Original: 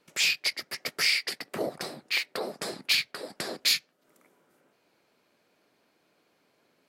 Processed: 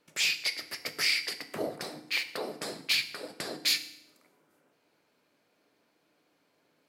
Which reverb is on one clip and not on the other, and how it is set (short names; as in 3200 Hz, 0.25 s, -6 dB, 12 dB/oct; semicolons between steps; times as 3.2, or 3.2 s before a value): FDN reverb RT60 0.8 s, low-frequency decay 1.45×, high-frequency decay 0.9×, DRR 8.5 dB; gain -3 dB